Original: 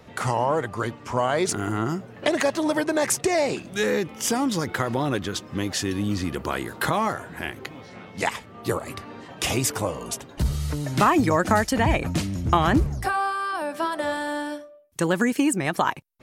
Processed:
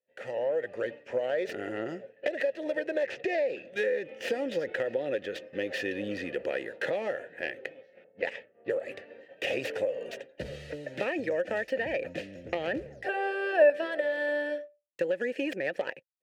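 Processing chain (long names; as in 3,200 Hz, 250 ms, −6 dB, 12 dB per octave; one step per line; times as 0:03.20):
stylus tracing distortion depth 0.26 ms
0:03.03–0:03.70: low-pass filter 5,800 Hz 12 dB per octave
downward expander −33 dBFS
automatic gain control gain up to 12 dB
0:08.04–0:08.76: low-pass that shuts in the quiet parts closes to 980 Hz, open at −12.5 dBFS
formant filter e
downward compressor 6 to 1, threshold −26 dBFS, peak gain reduction 10 dB
0:13.08–0:13.70: hollow resonant body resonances 440/630/1,700/2,600 Hz, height 15 dB, ringing for 35 ms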